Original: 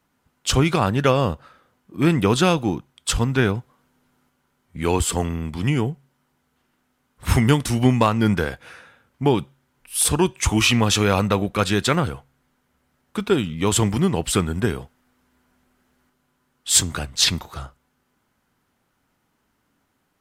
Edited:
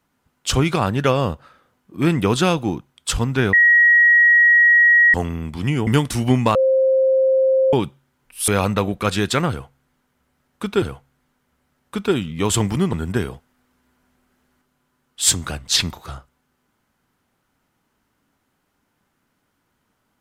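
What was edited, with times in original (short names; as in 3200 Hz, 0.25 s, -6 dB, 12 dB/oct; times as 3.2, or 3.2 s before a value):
3.53–5.14 bleep 1900 Hz -9 dBFS
5.87–7.42 cut
8.1–9.28 bleep 528 Hz -12.5 dBFS
10.03–11.02 cut
12.04–13.36 loop, 2 plays
14.15–14.41 cut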